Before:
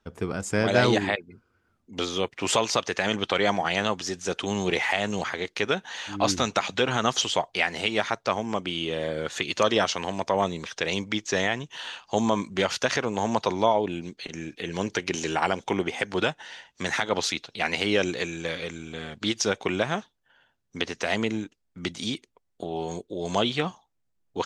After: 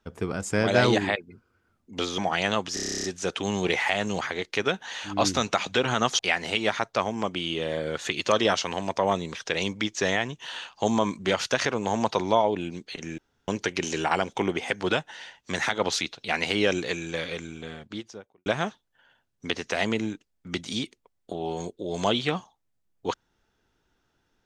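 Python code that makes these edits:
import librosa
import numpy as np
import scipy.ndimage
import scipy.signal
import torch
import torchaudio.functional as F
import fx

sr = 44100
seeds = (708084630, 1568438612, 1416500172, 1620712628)

y = fx.studio_fade_out(x, sr, start_s=18.69, length_s=1.08)
y = fx.edit(y, sr, fx.cut(start_s=2.18, length_s=1.33),
    fx.stutter(start_s=4.07, slice_s=0.03, count=11),
    fx.cut(start_s=7.22, length_s=0.28),
    fx.room_tone_fill(start_s=14.49, length_s=0.3), tone=tone)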